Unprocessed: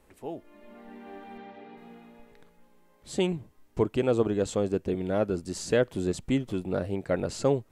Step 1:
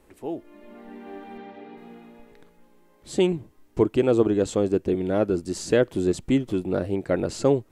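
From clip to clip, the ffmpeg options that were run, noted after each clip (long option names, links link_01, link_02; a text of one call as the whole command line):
ffmpeg -i in.wav -af "equalizer=frequency=330:width_type=o:width=0.57:gain=6,volume=2.5dB" out.wav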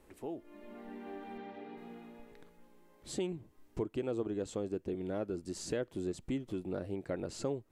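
ffmpeg -i in.wav -af "acompressor=threshold=-37dB:ratio=2,volume=-4.5dB" out.wav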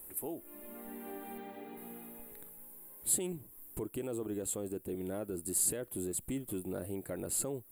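ffmpeg -i in.wav -af "alimiter=level_in=6dB:limit=-24dB:level=0:latency=1:release=15,volume=-6dB,aexciter=amount=15.9:drive=9.3:freq=8900" out.wav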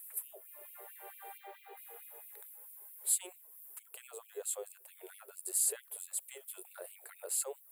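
ffmpeg -i in.wav -af "afftfilt=real='re*gte(b*sr/1024,350*pow(2200/350,0.5+0.5*sin(2*PI*4.5*pts/sr)))':imag='im*gte(b*sr/1024,350*pow(2200/350,0.5+0.5*sin(2*PI*4.5*pts/sr)))':win_size=1024:overlap=0.75" out.wav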